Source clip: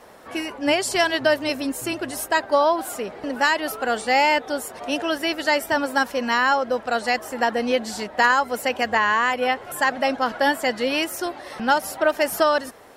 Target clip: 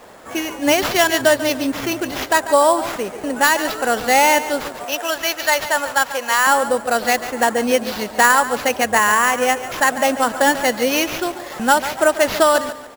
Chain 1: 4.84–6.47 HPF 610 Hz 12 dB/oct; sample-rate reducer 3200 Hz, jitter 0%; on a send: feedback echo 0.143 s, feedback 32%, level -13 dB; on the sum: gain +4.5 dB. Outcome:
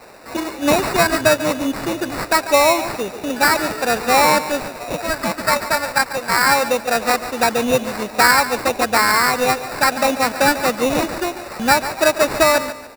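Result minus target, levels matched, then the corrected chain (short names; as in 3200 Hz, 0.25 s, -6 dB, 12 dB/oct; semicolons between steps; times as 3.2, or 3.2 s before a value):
sample-rate reducer: distortion +9 dB
4.84–6.47 HPF 610 Hz 12 dB/oct; sample-rate reducer 8700 Hz, jitter 0%; on a send: feedback echo 0.143 s, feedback 32%, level -13 dB; on the sum: gain +4.5 dB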